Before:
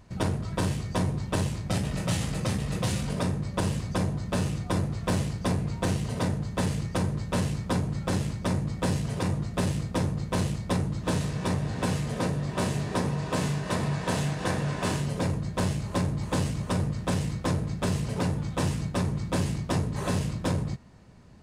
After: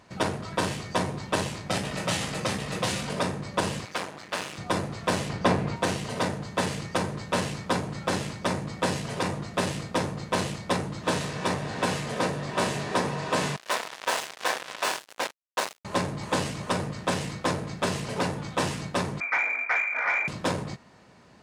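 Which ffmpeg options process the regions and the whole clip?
-filter_complex "[0:a]asettb=1/sr,asplit=3[s0][s1][s2];[s0]atrim=end=3.854[s3];[s1]atrim=start=3.85:end=4.58,asetpts=PTS-STARTPTS,afade=t=in:d=0.004:c=qsin,afade=t=out:st=0.726:d=0.004:c=qsin,highpass=f=430:p=1,equalizer=f=2100:t=o:w=2.1:g=4,aeval=exprs='max(val(0),0)':c=same[s4];[s2]atrim=start=4.576[s5];[s3][s4]acrossfade=d=0.004:c1=hsin:c2=qsin[s6];[s6][s5]acrossfade=d=0.004:c1=qsin:c2=hsin,asettb=1/sr,asplit=3[s7][s8][s9];[s7]atrim=end=5.294[s10];[s8]atrim=start=5.29:end=5.76,asetpts=PTS-STARTPTS,afade=t=in:d=0.004:c=qsin,afade=t=out:st=0.466:d=0.004:c=qsin,highshelf=f=4800:g=-11.5,acontrast=27[s11];[s9]atrim=start=5.756[s12];[s10][s11]acrossfade=d=0.004:c1=hsin:c2=qsin[s13];[s13][s12]acrossfade=d=0.004:c1=qsin:c2=hsin,asettb=1/sr,asplit=3[s14][s15][s16];[s14]atrim=end=13.564[s17];[s15]atrim=start=13.56:end=15.85,asetpts=PTS-STARTPTS,afade=t=in:d=0.004:c=qsin,afade=t=out:st=2.286:d=0.004:c=qsin,highpass=530,acrusher=bits=4:mix=0:aa=0.5[s18];[s16]atrim=start=15.846[s19];[s17][s18]acrossfade=d=0.004:c1=hsin:c2=qsin[s20];[s20][s19]acrossfade=d=0.004:c1=qsin:c2=hsin,asettb=1/sr,asplit=3[s21][s22][s23];[s21]atrim=end=19.204[s24];[s22]atrim=start=19.2:end=20.28,asetpts=PTS-STARTPTS,afade=t=in:d=0.004:c=qsin,afade=t=out:st=1.076:d=0.004:c=qsin,tiltshelf=f=1200:g=-8.5,lowpass=f=2100:t=q:w=0.5098,lowpass=f=2100:t=q:w=0.6013,lowpass=f=2100:t=q:w=0.9,lowpass=f=2100:t=q:w=2.563,afreqshift=-2500,asplit=2[s25][s26];[s26]highpass=f=720:p=1,volume=3.98,asoftclip=type=tanh:threshold=0.106[s27];[s25][s27]amix=inputs=2:normalize=0,lowpass=f=1900:p=1,volume=0.501[s28];[s23]atrim=start=20.276[s29];[s24][s28]acrossfade=d=0.004:c1=hsin:c2=qsin[s30];[s30][s29]acrossfade=d=0.004:c1=qsin:c2=hsin,highpass=f=570:p=1,highshelf=f=7700:g=-9,volume=2.24"

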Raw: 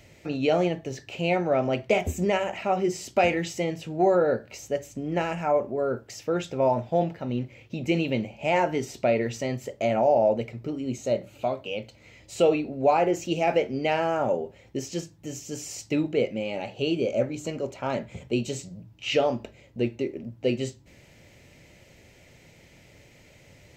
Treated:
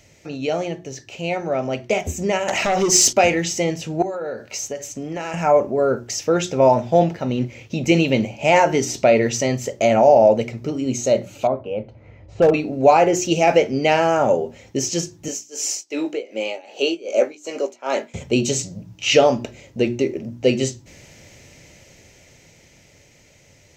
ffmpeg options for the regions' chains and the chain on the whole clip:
-filter_complex "[0:a]asettb=1/sr,asplit=3[s0][s1][s2];[s0]atrim=end=2.484[s3];[s1]atrim=start=2.48:end=3.13,asetpts=PTS-STARTPTS,afade=t=in:d=0.004:c=qsin,afade=t=out:st=0.646:d=0.004:c=qsin,acompressor=threshold=0.0501:ratio=5:attack=3.2:release=140:knee=1:detection=peak,bass=f=250:g=-4,treble=f=4000:g=5,aeval=exprs='0.112*sin(PI/2*2.24*val(0)/0.112)':c=same[s4];[s2]atrim=start=3.126[s5];[s3][s4]acrossfade=d=0.004:c1=hsin:c2=qsin[s6];[s6][s5]acrossfade=d=0.004:c1=qsin:c2=hsin,asettb=1/sr,asplit=3[s7][s8][s9];[s7]atrim=end=4.024[s10];[s8]atrim=start=4.02:end=5.34,asetpts=PTS-STARTPTS,afade=t=in:d=0.004:c=qsin,afade=t=out:st=1.316:d=0.004:c=qsin,lowshelf=f=320:g=-7,acompressor=threshold=0.0282:ratio=10:attack=3.2:release=140:knee=1:detection=peak[s11];[s9]atrim=start=5.336[s12];[s10][s11]acrossfade=d=0.004:c1=hsin:c2=qsin[s13];[s13][s12]acrossfade=d=0.004:c1=qsin:c2=hsin,asettb=1/sr,asplit=3[s14][s15][s16];[s14]atrim=end=11.474[s17];[s15]atrim=start=11.47:end=12.54,asetpts=PTS-STARTPTS,afade=t=in:d=0.004:c=qsin,afade=t=out:st=1.066:d=0.004:c=qsin,lowpass=1100,asubboost=boost=10.5:cutoff=120,asoftclip=type=hard:threshold=0.15[s18];[s16]atrim=start=12.536[s19];[s17][s18]acrossfade=d=0.004:c1=hsin:c2=qsin[s20];[s20][s19]acrossfade=d=0.004:c1=qsin:c2=hsin,asettb=1/sr,asplit=3[s21][s22][s23];[s21]atrim=end=15.284[s24];[s22]atrim=start=15.28:end=18.14,asetpts=PTS-STARTPTS,afade=t=in:d=0.004:c=qsin,afade=t=out:st=2.856:d=0.004:c=qsin,highpass=f=320:w=0.5412,highpass=f=320:w=1.3066,tremolo=f=2.6:d=0.93,asplit=2[s25][s26];[s26]adelay=18,volume=0.316[s27];[s25][s27]amix=inputs=2:normalize=0,atrim=end_sample=126126[s28];[s23]atrim=start=18.136[s29];[s24][s28]acrossfade=d=0.004:c1=hsin:c2=qsin[s30];[s30][s29]acrossfade=d=0.004:c1=qsin:c2=hsin,equalizer=f=6100:t=o:w=0.59:g=9,bandreject=f=60:t=h:w=6,bandreject=f=120:t=h:w=6,bandreject=f=180:t=h:w=6,bandreject=f=240:t=h:w=6,bandreject=f=300:t=h:w=6,bandreject=f=360:t=h:w=6,dynaudnorm=f=320:g=17:m=3.76"

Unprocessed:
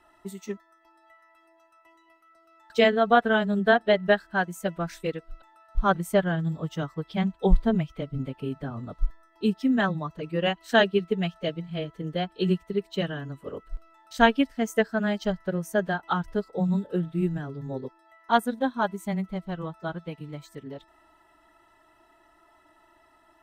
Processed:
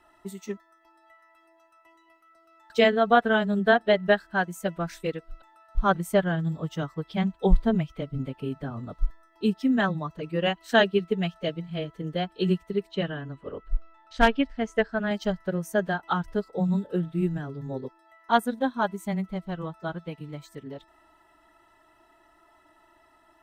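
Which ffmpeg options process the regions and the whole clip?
-filter_complex "[0:a]asettb=1/sr,asplit=3[s0][s1][s2];[s0]atrim=end=12.914[s3];[s1]atrim=start=12.91:end=15.11,asetpts=PTS-STARTPTS,afade=t=in:d=0.004:c=qsin,afade=t=out:st=2.196:d=0.004:c=qsin,lowpass=3900,asubboost=boost=8.5:cutoff=71,asoftclip=type=hard:threshold=0.266[s4];[s2]atrim=start=15.106[s5];[s3][s4]acrossfade=d=0.004:c1=hsin:c2=qsin[s6];[s6][s5]acrossfade=d=0.004:c1=qsin:c2=hsin"

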